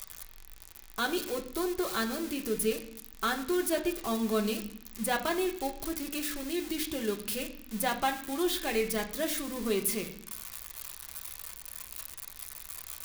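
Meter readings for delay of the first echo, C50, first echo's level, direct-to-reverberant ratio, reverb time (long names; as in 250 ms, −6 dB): no echo audible, 11.5 dB, no echo audible, 1.0 dB, 0.65 s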